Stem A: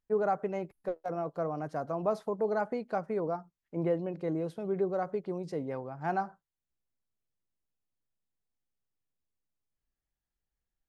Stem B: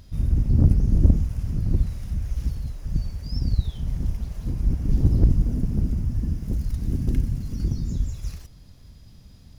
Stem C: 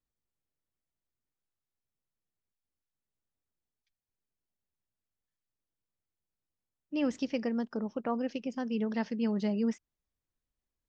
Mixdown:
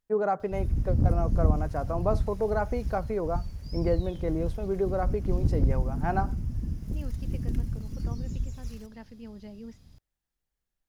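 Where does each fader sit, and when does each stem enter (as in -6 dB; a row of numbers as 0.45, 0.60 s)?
+2.5, -6.5, -13.5 dB; 0.00, 0.40, 0.00 s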